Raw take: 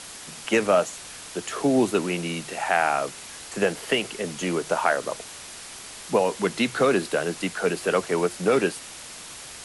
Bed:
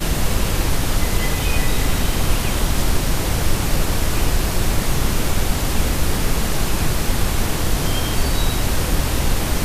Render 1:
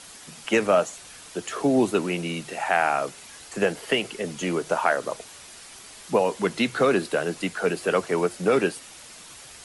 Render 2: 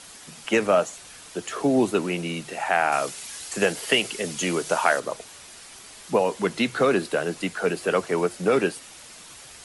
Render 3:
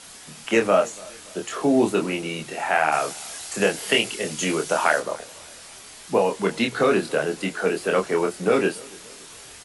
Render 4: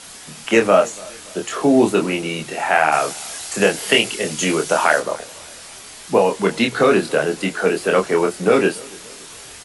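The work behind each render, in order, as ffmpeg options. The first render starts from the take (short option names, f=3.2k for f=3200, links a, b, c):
-af "afftdn=nr=6:nf=-41"
-filter_complex "[0:a]asettb=1/sr,asplit=3[a][b][c];[a]atrim=end=2.924[d];[b]atrim=start=2.92:end=5,asetpts=PTS-STARTPTS,afade=t=in:d=0.004:c=qsin,afade=t=out:st=2.076:d=0.004:c=qsin,highshelf=f=2.6k:g=9[e];[c]atrim=start=4.996[f];[d][e]acrossfade=d=0.004:c1=hsin:c2=qsin[g];[g][f]acrossfade=d=0.004:c1=qsin:c2=hsin"
-filter_complex "[0:a]asplit=2[a][b];[b]adelay=26,volume=-4dB[c];[a][c]amix=inputs=2:normalize=0,asplit=2[d][e];[e]adelay=285,lowpass=f=2k:p=1,volume=-23dB,asplit=2[f][g];[g]adelay=285,lowpass=f=2k:p=1,volume=0.47,asplit=2[h][i];[i]adelay=285,lowpass=f=2k:p=1,volume=0.47[j];[d][f][h][j]amix=inputs=4:normalize=0"
-af "volume=5dB,alimiter=limit=-1dB:level=0:latency=1"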